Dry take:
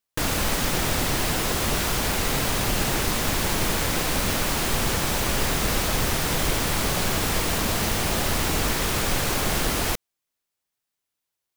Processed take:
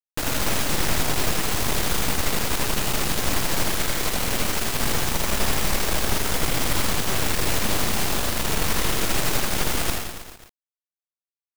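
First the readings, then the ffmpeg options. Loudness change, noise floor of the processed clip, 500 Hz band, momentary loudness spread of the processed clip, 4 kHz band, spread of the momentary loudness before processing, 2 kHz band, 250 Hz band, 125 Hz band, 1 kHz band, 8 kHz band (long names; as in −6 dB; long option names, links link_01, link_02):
0.0 dB, below −85 dBFS, −1.0 dB, 1 LU, 0.0 dB, 0 LU, −0.5 dB, −1.0 dB, −1.5 dB, −0.5 dB, +0.5 dB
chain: -af "aeval=exprs='0.335*(cos(1*acos(clip(val(0)/0.335,-1,1)))-cos(1*PI/2))+0.0668*(cos(8*acos(clip(val(0)/0.335,-1,1)))-cos(8*PI/2))':channel_layout=same,aecho=1:1:80|172|277.8|399.5|539.4:0.631|0.398|0.251|0.158|0.1,acrusher=bits=8:mix=0:aa=0.000001,volume=-4.5dB"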